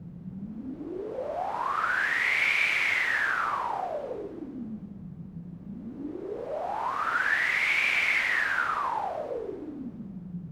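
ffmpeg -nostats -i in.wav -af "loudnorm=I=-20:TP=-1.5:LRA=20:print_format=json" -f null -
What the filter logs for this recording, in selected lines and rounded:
"input_i" : "-26.6",
"input_tp" : "-12.9",
"input_lra" : "5.8",
"input_thresh" : "-37.9",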